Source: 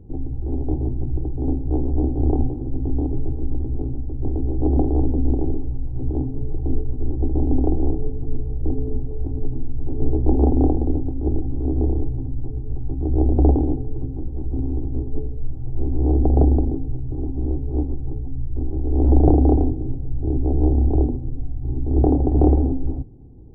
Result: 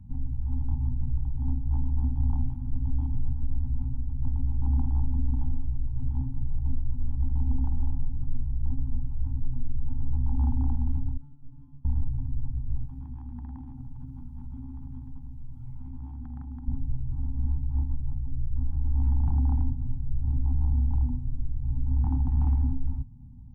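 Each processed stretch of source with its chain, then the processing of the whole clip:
0:11.17–0:11.85: compressor whose output falls as the input rises −23 dBFS, ratio −0.5 + stiff-string resonator 140 Hz, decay 0.6 s, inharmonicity 0.002
0:12.85–0:16.68: low-shelf EQ 180 Hz −11.5 dB + downward compressor 8 to 1, threshold −29 dBFS
whole clip: Chebyshev band-stop filter 250–880 Hz, order 4; dynamic equaliser 190 Hz, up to −6 dB, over −37 dBFS, Q 0.82; brickwall limiter −15.5 dBFS; level −1.5 dB

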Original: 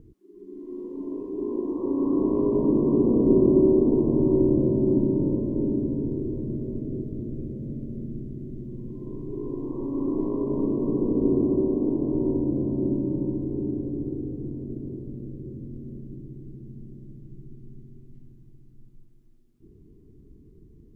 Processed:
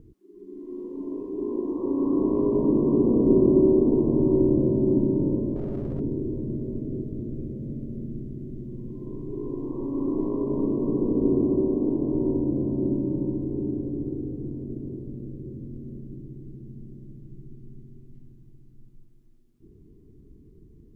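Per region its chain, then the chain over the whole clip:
0:05.56–0:06.00: gain on one half-wave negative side −3 dB + parametric band 280 Hz −11 dB 0.78 octaves + envelope flattener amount 100%
whole clip: no processing

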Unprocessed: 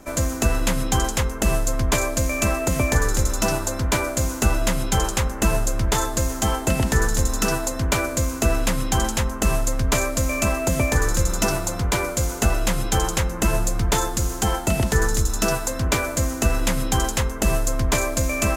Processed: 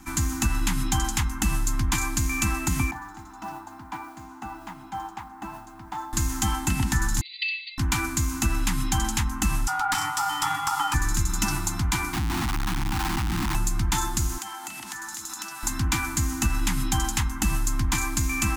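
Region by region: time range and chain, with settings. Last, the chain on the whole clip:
0:02.91–0:06.13: resonant band-pass 650 Hz, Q 2.3 + noise that follows the level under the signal 29 dB
0:07.21–0:07.78: linear-phase brick-wall band-pass 1,900–4,800 Hz + comb filter 5.3 ms, depth 88%
0:09.67–0:10.94: frequency shifter −370 Hz + ring modulation 1,100 Hz
0:12.13–0:13.55: low-pass filter 1,600 Hz 24 dB per octave + low-shelf EQ 80 Hz −5 dB + comparator with hysteresis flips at −37.5 dBFS
0:14.38–0:15.63: high-pass filter 460 Hz + downward compressor 12 to 1, threshold −30 dBFS
whole clip: elliptic band-stop filter 330–790 Hz, stop band 40 dB; downward compressor 2 to 1, threshold −22 dBFS

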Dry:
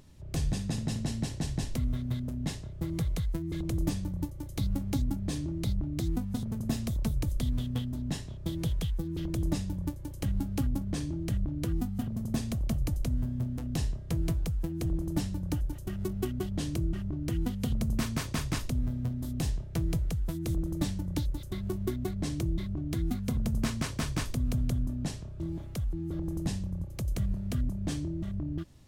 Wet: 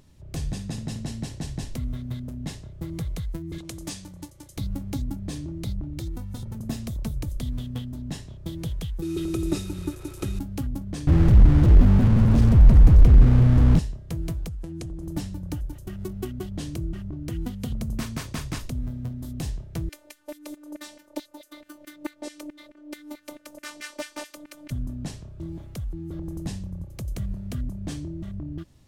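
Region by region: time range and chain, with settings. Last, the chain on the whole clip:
0:03.58–0:04.57: low-pass filter 8,900 Hz + spectral tilt +3 dB per octave
0:05.89–0:06.55: comb filter 2.2 ms, depth 57% + downward compressor, threshold −27 dBFS + notch filter 440 Hz, Q 5.3
0:09.02–0:10.39: linear delta modulator 64 kbit/s, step −44.5 dBFS + high-shelf EQ 6,000 Hz +9.5 dB + hollow resonant body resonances 370/1,300/2,500/3,700 Hz, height 16 dB, ringing for 55 ms
0:11.07–0:13.79: log-companded quantiser 2 bits + RIAA equalisation playback
0:14.48–0:15.03: downward compressor, threshold −30 dBFS + dynamic equaliser 6,600 Hz, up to +4 dB, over −59 dBFS, Q 0.82 + low-pass filter 11,000 Hz 24 dB per octave
0:19.89–0:24.71: low shelf with overshoot 680 Hz +12 dB, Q 1.5 + auto-filter high-pass saw down 4.6 Hz 630–2,100 Hz + phases set to zero 298 Hz
whole clip: no processing

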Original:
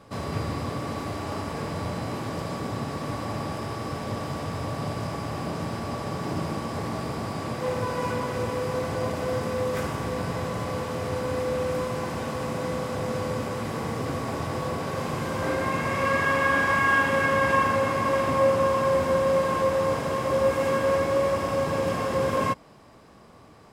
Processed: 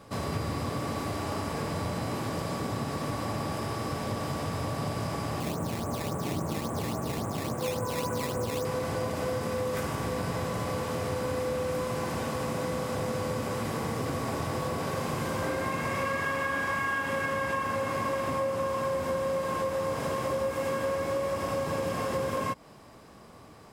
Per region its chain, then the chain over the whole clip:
0:05.40–0:08.65: low-pass filter 1,400 Hz + sample-and-hold swept by an LFO 10× 3.6 Hz + highs frequency-modulated by the lows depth 0.14 ms
whole clip: high-shelf EQ 8,300 Hz +7 dB; downward compressor, threshold −27 dBFS

